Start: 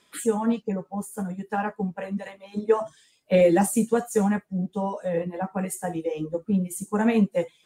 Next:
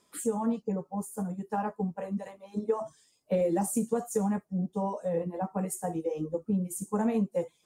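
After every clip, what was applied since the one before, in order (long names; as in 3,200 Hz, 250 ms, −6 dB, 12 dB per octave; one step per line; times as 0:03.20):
flat-topped bell 2,400 Hz −8.5 dB
downward compressor 5 to 1, threshold −21 dBFS, peak gain reduction 7.5 dB
level −3 dB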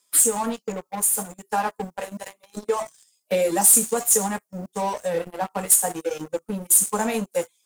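spectral tilt +4.5 dB per octave
leveller curve on the samples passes 3
level −1.5 dB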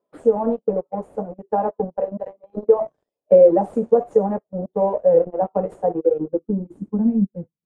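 low-pass filter sweep 560 Hz → 180 Hz, 0:05.78–0:07.40
level +3.5 dB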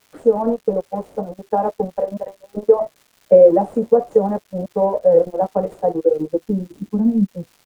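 pitch vibrato 0.59 Hz 6.7 cents
surface crackle 410 per second −43 dBFS
level +2 dB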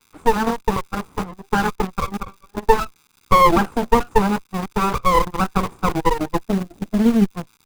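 lower of the sound and its delayed copy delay 0.82 ms
in parallel at −7.5 dB: bit reduction 4 bits
on the sum: level −1 dB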